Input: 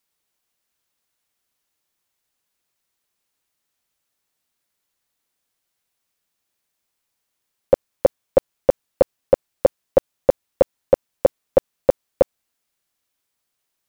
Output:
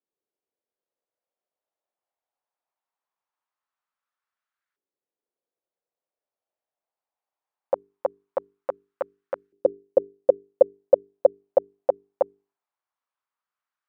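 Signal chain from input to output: notches 50/100/150/200/250/300/350/400/450 Hz; LFO band-pass saw up 0.21 Hz 370–1500 Hz

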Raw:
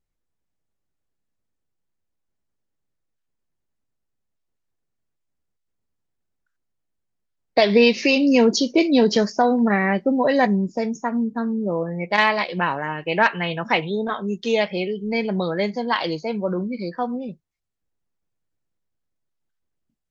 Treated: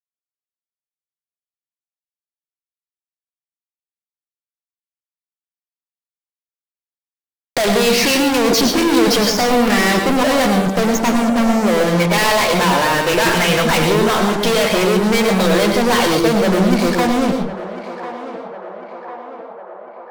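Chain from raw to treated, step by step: bell 130 Hz -12.5 dB 0.63 oct; fuzz box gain 44 dB, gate -43 dBFS; narrowing echo 1.049 s, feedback 69%, band-pass 750 Hz, level -12 dB; on a send at -4.5 dB: reverb RT60 0.35 s, pre-delay 0.1 s; on the sum: mismatched tape noise reduction encoder only; gain -2 dB

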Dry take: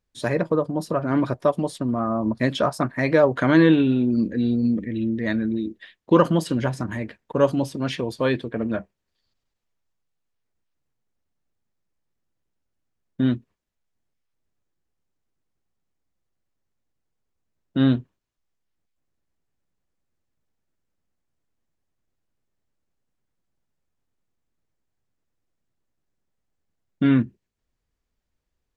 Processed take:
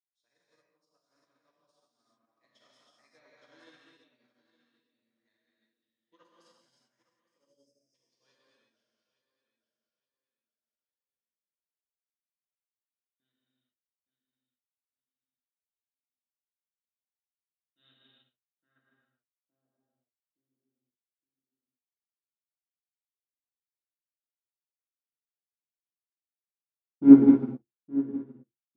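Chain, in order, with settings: on a send: feedback echo 0.866 s, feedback 31%, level -8 dB; on the sum: spectral delete 7.29–7.95, 680–4800 Hz; band-pass sweep 5500 Hz -> 360 Hz, 17.32–20.46; dynamic EQ 260 Hz, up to -5 dB, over -53 dBFS, Q 5.7; in parallel at -6 dB: hard clip -30 dBFS, distortion -7 dB; on the sum: high shelf 2100 Hz -8 dB; non-linear reverb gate 0.43 s flat, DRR -7 dB; upward expander 2.5:1, over -43 dBFS; gain +7 dB

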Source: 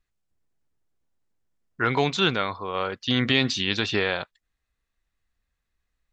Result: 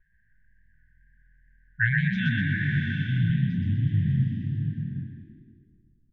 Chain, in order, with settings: band noise 190–1300 Hz -68 dBFS; brick-wall FIR band-stop 170–1500 Hz; wow and flutter 39 cents; ripple EQ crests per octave 1.2, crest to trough 7 dB; low-pass sweep 1600 Hz -> 310 Hz, 1.82–4; low shelf 270 Hz +9.5 dB; frequency-shifting echo 0.124 s, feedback 45%, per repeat +41 Hz, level -3 dB; bloom reverb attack 0.77 s, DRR 3.5 dB

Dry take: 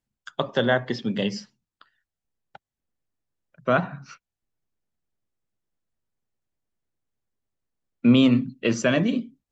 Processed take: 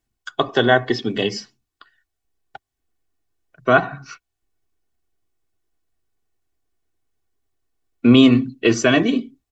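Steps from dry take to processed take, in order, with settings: comb 2.7 ms, depth 68%; gain +5.5 dB

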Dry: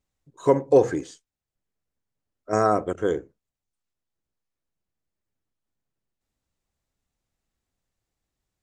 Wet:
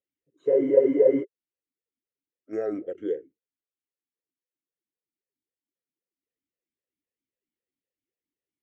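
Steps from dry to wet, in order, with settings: low shelf 380 Hz +5 dB; spectral freeze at 0.5, 0.72 s; vowel sweep e-i 3.8 Hz

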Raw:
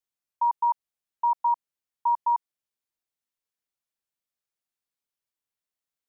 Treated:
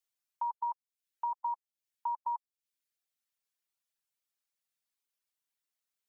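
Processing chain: reverb removal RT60 0.6 s; compressor, threshold -24 dBFS, peak gain reduction 4 dB; mismatched tape noise reduction encoder only; gain -7 dB

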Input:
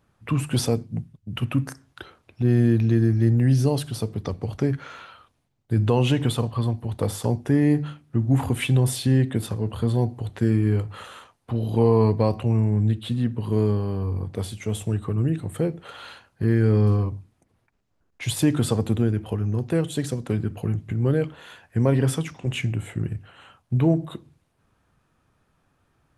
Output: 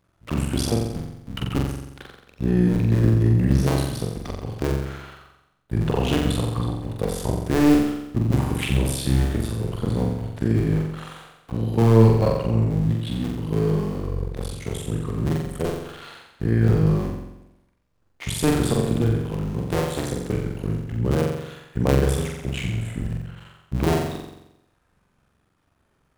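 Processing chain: cycle switcher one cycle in 2, muted; flutter echo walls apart 7.6 m, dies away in 0.87 s

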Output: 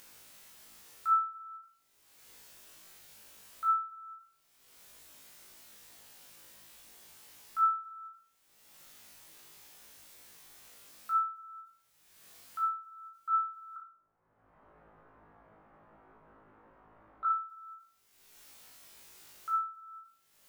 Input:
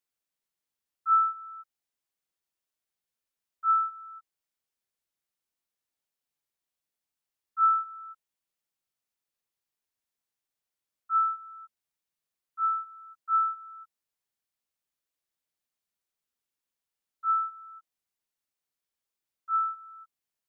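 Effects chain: 13.76–17.25 LPF 1300 Hz 24 dB/oct; upward compressor, threshold -36 dBFS; flutter echo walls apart 3.2 m, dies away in 0.48 s; ending taper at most 130 dB/s

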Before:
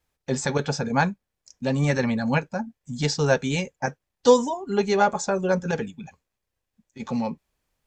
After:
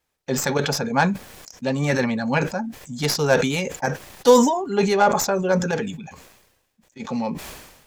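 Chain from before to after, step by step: tracing distortion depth 0.044 ms; low shelf 120 Hz -10.5 dB; sustainer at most 55 dB/s; gain +2.5 dB

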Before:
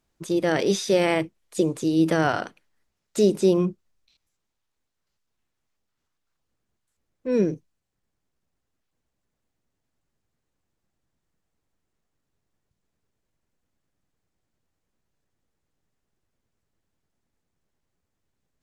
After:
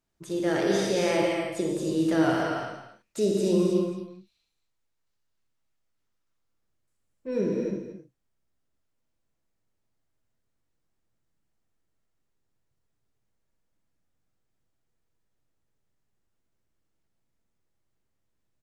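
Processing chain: loudspeakers at several distances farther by 21 m -10 dB, 76 m -11 dB; non-linear reverb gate 0.34 s flat, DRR -2 dB; gain -7.5 dB

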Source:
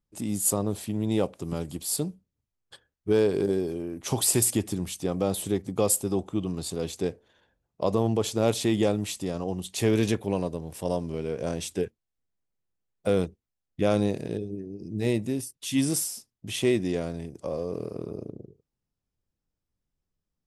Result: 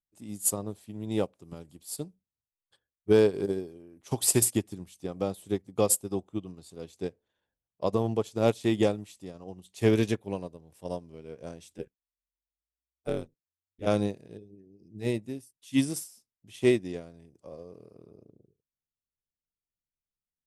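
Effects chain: 11.77–13.85 ring modulator 34 Hz -> 100 Hz; upward expander 2.5:1, over -33 dBFS; gain +3 dB

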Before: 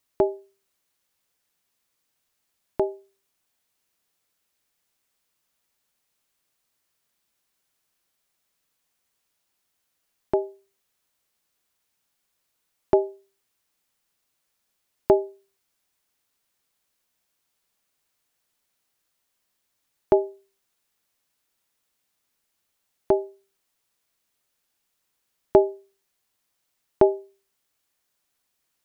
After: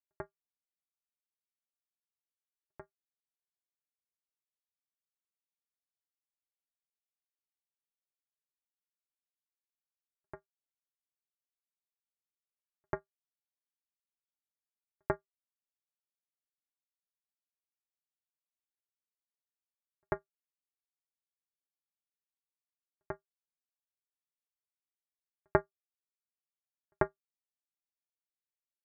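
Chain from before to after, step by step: expander -55 dBFS; pre-echo 92 ms -16.5 dB; power-law curve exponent 3; gain -4.5 dB

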